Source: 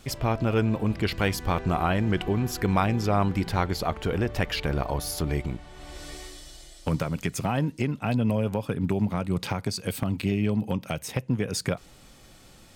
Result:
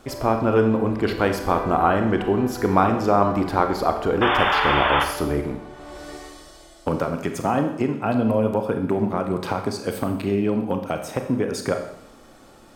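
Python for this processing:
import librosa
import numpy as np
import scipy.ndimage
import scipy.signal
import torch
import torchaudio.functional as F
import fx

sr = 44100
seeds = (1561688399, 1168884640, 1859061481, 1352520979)

y = fx.spec_paint(x, sr, seeds[0], shape='noise', start_s=4.21, length_s=0.83, low_hz=710.0, high_hz=3600.0, level_db=-24.0)
y = fx.band_shelf(y, sr, hz=610.0, db=10.0, octaves=3.0)
y = fx.rev_schroeder(y, sr, rt60_s=0.78, comb_ms=28, drr_db=5.5)
y = y * librosa.db_to_amplitude(-3.0)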